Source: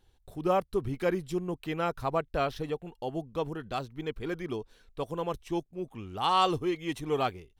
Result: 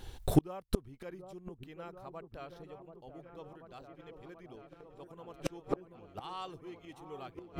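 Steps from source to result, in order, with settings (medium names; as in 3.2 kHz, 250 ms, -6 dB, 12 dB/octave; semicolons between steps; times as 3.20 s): delay with an opening low-pass 734 ms, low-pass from 750 Hz, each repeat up 1 oct, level -6 dB; inverted gate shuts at -29 dBFS, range -36 dB; trim +18 dB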